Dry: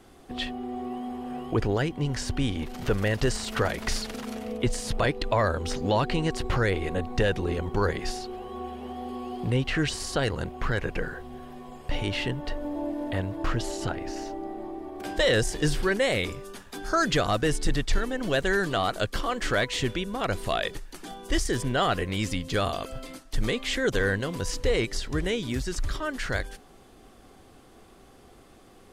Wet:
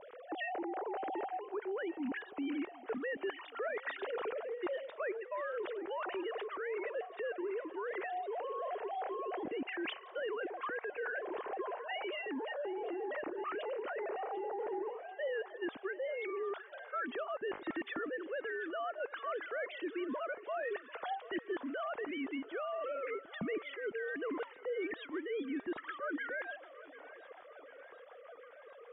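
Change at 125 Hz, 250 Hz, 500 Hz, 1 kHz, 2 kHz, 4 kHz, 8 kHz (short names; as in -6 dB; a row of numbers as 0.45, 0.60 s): under -35 dB, -11.5 dB, -8.5 dB, -8.5 dB, -10.0 dB, -18.5 dB, under -40 dB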